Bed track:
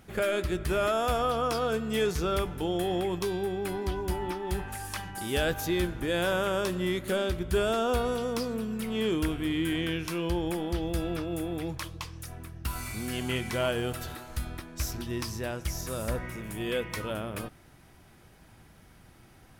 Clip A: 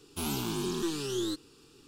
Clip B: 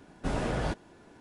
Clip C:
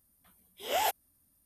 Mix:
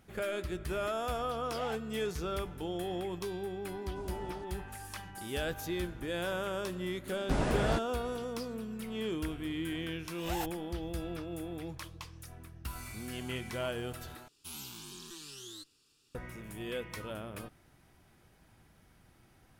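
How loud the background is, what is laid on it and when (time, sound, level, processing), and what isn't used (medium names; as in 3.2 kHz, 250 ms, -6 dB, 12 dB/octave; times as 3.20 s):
bed track -7.5 dB
0.85 s: add C -13 dB + low-pass 4.1 kHz
3.71 s: add B -17.5 dB + peaking EQ 1.8 kHz -12 dB 0.96 oct
7.05 s: add B
9.55 s: add C -8 dB + comb filter that takes the minimum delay 1.1 ms
14.28 s: replace with A -1 dB + amplifier tone stack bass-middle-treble 5-5-5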